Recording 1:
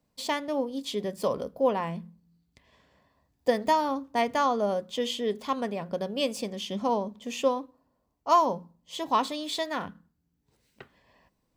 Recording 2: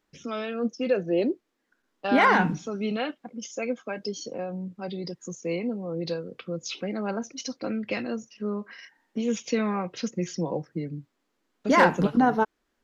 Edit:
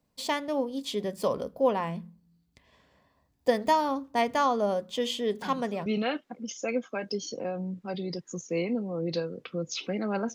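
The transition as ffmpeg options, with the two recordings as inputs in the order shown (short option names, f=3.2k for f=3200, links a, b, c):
-filter_complex "[1:a]asplit=2[a][b];[0:a]apad=whole_dur=10.34,atrim=end=10.34,atrim=end=5.862[c];[b]atrim=start=2.798:end=7.28[d];[a]atrim=start=2.36:end=2.8,asetpts=PTS-STARTPTS,volume=-16dB,afade=t=in:d=0.004:c=hsin,afade=t=out:st=0.436:d=0.004:c=hsin,adelay=5420[e];[c][d]acrossfade=d=0.004:c1=hsin:c2=hsin[f];[f][e]amix=inputs=2:normalize=0"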